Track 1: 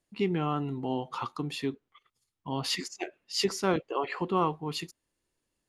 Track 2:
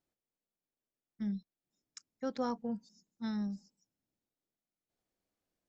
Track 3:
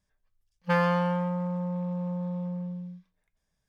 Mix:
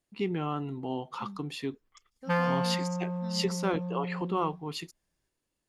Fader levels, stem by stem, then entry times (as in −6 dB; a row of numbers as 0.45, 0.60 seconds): −2.5, −8.0, −3.0 decibels; 0.00, 0.00, 1.60 seconds